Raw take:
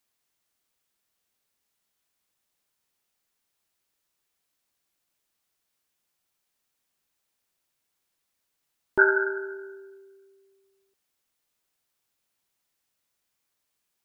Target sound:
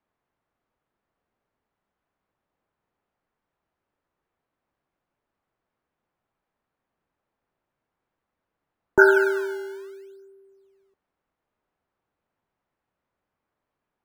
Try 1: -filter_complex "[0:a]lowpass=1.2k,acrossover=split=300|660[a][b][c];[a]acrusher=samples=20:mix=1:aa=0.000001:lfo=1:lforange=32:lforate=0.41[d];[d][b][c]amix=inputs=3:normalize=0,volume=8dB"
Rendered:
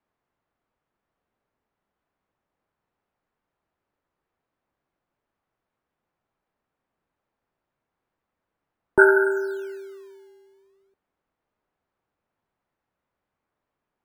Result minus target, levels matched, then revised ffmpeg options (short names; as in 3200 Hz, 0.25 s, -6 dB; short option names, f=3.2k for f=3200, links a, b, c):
decimation with a swept rate: distortion -10 dB
-filter_complex "[0:a]lowpass=1.2k,acrossover=split=300|660[a][b][c];[a]acrusher=samples=20:mix=1:aa=0.000001:lfo=1:lforange=32:lforate=0.65[d];[d][b][c]amix=inputs=3:normalize=0,volume=8dB"